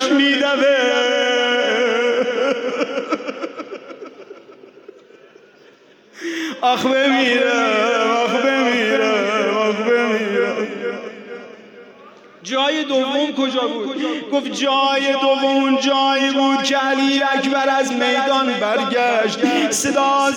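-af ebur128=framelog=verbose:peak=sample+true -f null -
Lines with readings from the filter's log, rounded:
Integrated loudness:
  I:         -17.0 LUFS
  Threshold: -28.0 LUFS
Loudness range:
  LRA:         9.1 LU
  Threshold: -38.4 LUFS
  LRA low:   -25.2 LUFS
  LRA high:  -16.1 LUFS
Sample peak:
  Peak:       -3.3 dBFS
True peak:
  Peak:       -3.3 dBFS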